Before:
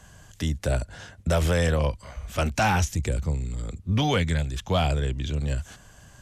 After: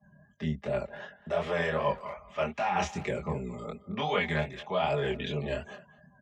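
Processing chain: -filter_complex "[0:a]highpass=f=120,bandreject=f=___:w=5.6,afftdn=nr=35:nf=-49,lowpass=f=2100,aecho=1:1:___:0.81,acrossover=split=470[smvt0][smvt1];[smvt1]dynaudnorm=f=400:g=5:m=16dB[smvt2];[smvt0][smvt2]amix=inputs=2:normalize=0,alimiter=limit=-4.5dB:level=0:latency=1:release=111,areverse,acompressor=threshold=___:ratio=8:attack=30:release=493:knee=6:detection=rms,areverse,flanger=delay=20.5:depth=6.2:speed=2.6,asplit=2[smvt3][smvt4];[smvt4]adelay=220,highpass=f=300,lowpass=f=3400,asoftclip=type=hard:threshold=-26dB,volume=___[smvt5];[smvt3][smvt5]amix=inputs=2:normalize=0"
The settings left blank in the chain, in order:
1500, 4.9, -23dB, -16dB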